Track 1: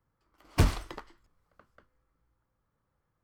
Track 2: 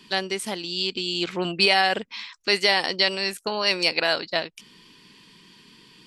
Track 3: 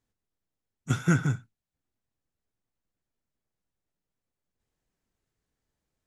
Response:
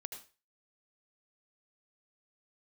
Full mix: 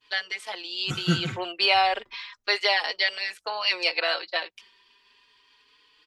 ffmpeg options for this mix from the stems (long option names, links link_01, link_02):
-filter_complex "[0:a]lowpass=frequency=1900:poles=1,asoftclip=type=hard:threshold=-31dB,adelay=1150,volume=-16.5dB[link_01];[1:a]agate=range=-33dB:threshold=-46dB:ratio=3:detection=peak,highpass=frequency=260:width=0.5412,highpass=frequency=260:width=1.3066,acrossover=split=500 4800:gain=0.1 1 0.158[link_02][link_03][link_04];[link_02][link_03][link_04]amix=inputs=3:normalize=0,volume=2.5dB[link_05];[2:a]volume=0.5dB[link_06];[link_01][link_05][link_06]amix=inputs=3:normalize=0,asplit=2[link_07][link_08];[link_08]adelay=4.3,afreqshift=0.34[link_09];[link_07][link_09]amix=inputs=2:normalize=1"